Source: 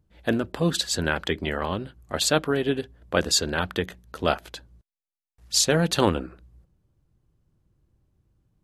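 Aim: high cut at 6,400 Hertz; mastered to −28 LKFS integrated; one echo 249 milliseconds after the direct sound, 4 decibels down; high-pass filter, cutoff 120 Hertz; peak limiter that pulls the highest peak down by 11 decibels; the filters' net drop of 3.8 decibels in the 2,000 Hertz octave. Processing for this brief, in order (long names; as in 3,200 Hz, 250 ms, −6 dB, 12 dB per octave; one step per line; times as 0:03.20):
high-pass filter 120 Hz
low-pass filter 6,400 Hz
parametric band 2,000 Hz −5.5 dB
brickwall limiter −17 dBFS
single-tap delay 249 ms −4 dB
level +0.5 dB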